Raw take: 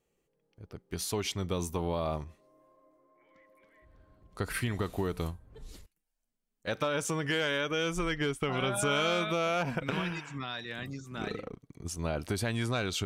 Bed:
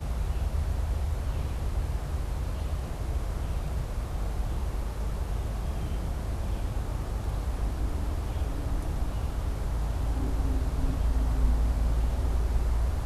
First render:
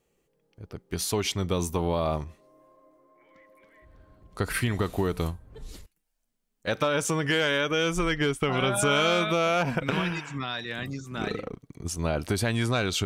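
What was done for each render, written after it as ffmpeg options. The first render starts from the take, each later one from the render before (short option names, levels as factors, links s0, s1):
-af "volume=1.88"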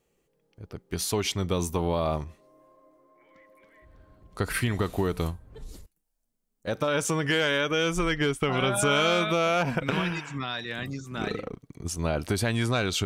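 -filter_complex "[0:a]asettb=1/sr,asplit=3[s0][s1][s2];[s0]atrim=end=5.644[s3];[s1]atrim=start=5.64:end=6.88,asetpts=PTS-STARTPTS,afade=t=in:d=0.004:c=qsin,afade=t=out:st=1.236:d=0.004:c=qsin,equalizer=f=2500:t=o:w=2.2:g=-8[s4];[s2]atrim=start=6.876[s5];[s3][s4]acrossfade=d=0.004:c1=hsin:c2=qsin[s6];[s6][s5]acrossfade=d=0.004:c1=qsin:c2=hsin"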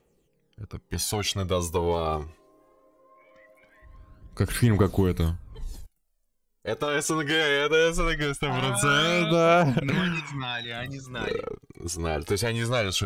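-af "asoftclip=type=hard:threshold=0.133,aphaser=in_gain=1:out_gain=1:delay=2.8:decay=0.57:speed=0.21:type=triangular"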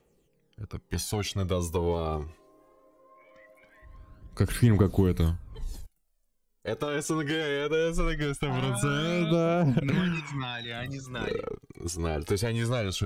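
-filter_complex "[0:a]acrossover=split=430[s0][s1];[s1]acompressor=threshold=0.02:ratio=3[s2];[s0][s2]amix=inputs=2:normalize=0"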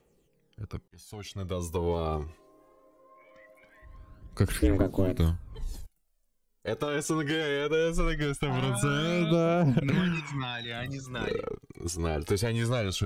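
-filter_complex "[0:a]asettb=1/sr,asplit=3[s0][s1][s2];[s0]atrim=end=4.584[s3];[s1]atrim=start=4.58:end=5.19,asetpts=PTS-STARTPTS,afade=t=in:d=0.004:c=qsin,afade=t=out:st=0.606:d=0.004:c=qsin,aeval=exprs='val(0)*sin(2*PI*190*n/s)':c=same[s4];[s2]atrim=start=5.186[s5];[s3][s4]acrossfade=d=0.004:c1=hsin:c2=qsin[s6];[s6][s5]acrossfade=d=0.004:c1=qsin:c2=hsin,asplit=2[s7][s8];[s7]atrim=end=0.88,asetpts=PTS-STARTPTS,afade=t=out:st=0.876:d=0.004:c=hsin[s9];[s8]atrim=start=0.88,asetpts=PTS-STARTPTS,afade=t=in:d=1.16[s10];[s9][s10]concat=n=2:v=0:a=1"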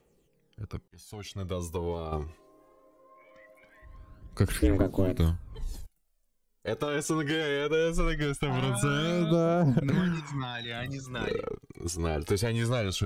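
-filter_complex "[0:a]asettb=1/sr,asplit=3[s0][s1][s2];[s0]atrim=end=9.114[s3];[s1]atrim=start=9.11:end=10.55,asetpts=PTS-STARTPTS,afade=t=in:d=0.004:c=qsin,afade=t=out:st=1.436:d=0.004:c=qsin,equalizer=f=2600:t=o:w=0.59:g=-10.5[s4];[s2]atrim=start=10.546[s5];[s3][s4]acrossfade=d=0.004:c1=hsin:c2=qsin[s6];[s6][s5]acrossfade=d=0.004:c1=qsin:c2=hsin,asplit=2[s7][s8];[s7]atrim=end=2.12,asetpts=PTS-STARTPTS,afade=t=out:st=1.48:d=0.64:silence=0.446684[s9];[s8]atrim=start=2.12,asetpts=PTS-STARTPTS,afade=t=in:d=0.004:c=hsin:silence=0.446684[s10];[s9][s10]concat=n=2:v=0:a=1"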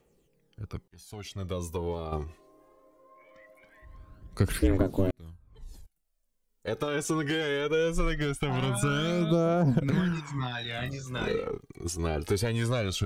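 -filter_complex "[0:a]asettb=1/sr,asplit=3[s0][s1][s2];[s0]atrim=end=10.364[s3];[s1]atrim=start=10.36:end=11.63,asetpts=PTS-STARTPTS,afade=t=in:d=0.004:c=qsin,afade=t=out:st=1.266:d=0.004:c=qsin,asplit=2[s4][s5];[s5]adelay=24,volume=0.631[s6];[s4][s6]amix=inputs=2:normalize=0,atrim=end_sample=56007[s7];[s2]atrim=start=11.626[s8];[s3][s7]acrossfade=d=0.004:c1=hsin:c2=qsin[s9];[s9][s8]acrossfade=d=0.004:c1=qsin:c2=hsin,asplit=2[s10][s11];[s10]atrim=end=5.11,asetpts=PTS-STARTPTS,afade=t=out:st=5.106:d=0.004:c=hsin[s12];[s11]atrim=start=5.11,asetpts=PTS-STARTPTS,afade=t=in:d=1.66[s13];[s12][s13]concat=n=2:v=0:a=1"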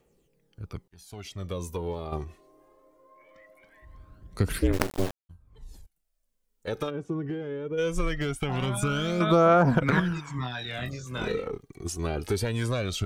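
-filter_complex "[0:a]asplit=3[s0][s1][s2];[s0]afade=t=out:st=4.72:d=0.02[s3];[s1]acrusher=bits=3:dc=4:mix=0:aa=0.000001,afade=t=in:st=4.72:d=0.02,afade=t=out:st=5.29:d=0.02[s4];[s2]afade=t=in:st=5.29:d=0.02[s5];[s3][s4][s5]amix=inputs=3:normalize=0,asplit=3[s6][s7][s8];[s6]afade=t=out:st=6.89:d=0.02[s9];[s7]bandpass=f=190:t=q:w=0.66,afade=t=in:st=6.89:d=0.02,afade=t=out:st=7.77:d=0.02[s10];[s8]afade=t=in:st=7.77:d=0.02[s11];[s9][s10][s11]amix=inputs=3:normalize=0,asettb=1/sr,asplit=3[s12][s13][s14];[s12]atrim=end=9.204[s15];[s13]atrim=start=9.2:end=10,asetpts=PTS-STARTPTS,afade=t=in:d=0.004:c=qsin,afade=t=out:st=0.796:d=0.004:c=qsin,equalizer=f=1300:t=o:w=2.3:g=14.5[s16];[s14]atrim=start=9.996[s17];[s15][s16]acrossfade=d=0.004:c1=hsin:c2=qsin[s18];[s18][s17]acrossfade=d=0.004:c1=qsin:c2=hsin"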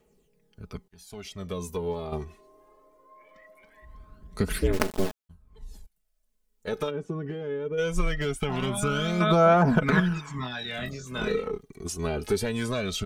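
-af "aecho=1:1:4.7:0.55"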